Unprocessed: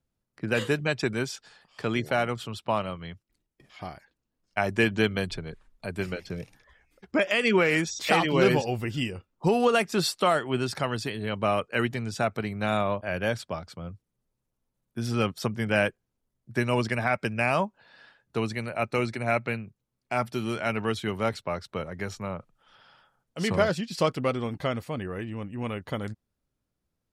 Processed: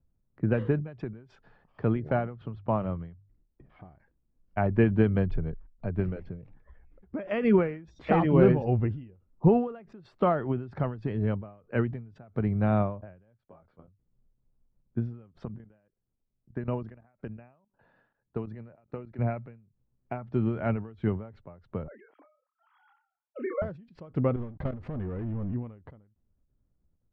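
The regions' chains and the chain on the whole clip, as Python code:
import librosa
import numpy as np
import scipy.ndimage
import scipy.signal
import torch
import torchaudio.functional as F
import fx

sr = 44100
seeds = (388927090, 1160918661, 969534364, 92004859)

y = fx.chain(x, sr, fx.block_float(bits=5),
    fx.air_absorb(metres=100.0),
    fx.hum_notches(base_hz=50, count=3), at=(2.26, 3.89))
y = fx.chain(y, sr, fx.bass_treble(bass_db=-11, treble_db=-6),
    fx.level_steps(step_db=14),
    fx.detune_double(cents=34), at=(13.45, 13.88))
y = fx.chain(y, sr, fx.low_shelf(hz=110.0, db=-8.0),
    fx.notch(hz=2200.0, q=15.0),
    fx.level_steps(step_db=15), at=(15.45, 19.19))
y = fx.chain(y, sr, fx.sine_speech(),
    fx.highpass(hz=520.0, slope=12),
    fx.doubler(ms=29.0, db=-5.0), at=(21.88, 23.62))
y = fx.chain(y, sr, fx.leveller(passes=5),
    fx.level_steps(step_db=19), at=(24.36, 25.54))
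y = scipy.signal.sosfilt(scipy.signal.butter(2, 1800.0, 'lowpass', fs=sr, output='sos'), y)
y = fx.tilt_eq(y, sr, slope=-3.5)
y = fx.end_taper(y, sr, db_per_s=110.0)
y = F.gain(torch.from_numpy(y), -3.0).numpy()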